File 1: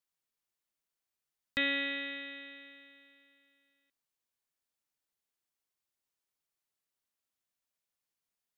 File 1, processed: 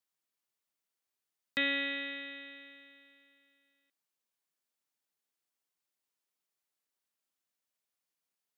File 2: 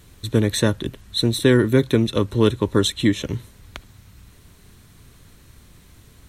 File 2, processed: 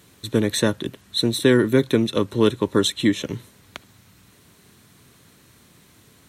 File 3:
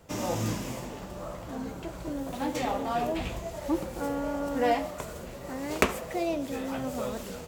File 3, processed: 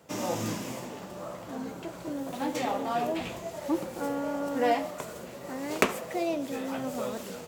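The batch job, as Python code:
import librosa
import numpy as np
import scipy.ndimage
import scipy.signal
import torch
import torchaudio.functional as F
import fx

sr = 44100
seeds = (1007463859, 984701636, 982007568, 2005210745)

y = scipy.signal.sosfilt(scipy.signal.butter(2, 150.0, 'highpass', fs=sr, output='sos'), x)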